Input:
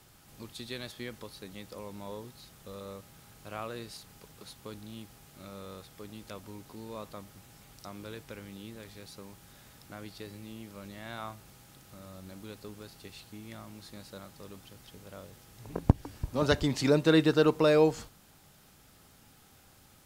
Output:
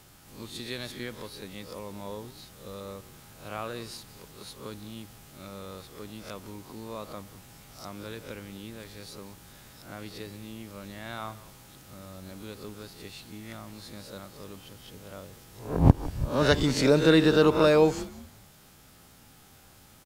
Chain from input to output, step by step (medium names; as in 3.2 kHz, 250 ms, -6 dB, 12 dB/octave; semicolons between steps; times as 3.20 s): reverse spectral sustain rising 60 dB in 0.41 s; frequency-shifting echo 185 ms, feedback 36%, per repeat -120 Hz, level -18 dB; trim +2.5 dB